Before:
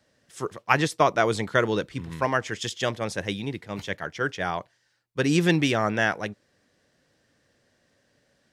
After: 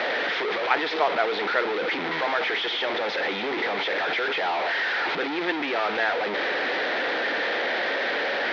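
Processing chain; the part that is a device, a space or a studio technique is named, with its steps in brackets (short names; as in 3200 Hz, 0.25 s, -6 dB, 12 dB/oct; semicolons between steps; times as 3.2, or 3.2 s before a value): digital answering machine (BPF 360–3000 Hz; delta modulation 32 kbps, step -17.5 dBFS; speaker cabinet 470–3300 Hz, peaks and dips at 590 Hz -5 dB, 1100 Hz -8 dB, 1600 Hz -3 dB, 2800 Hz -7 dB); gain +2.5 dB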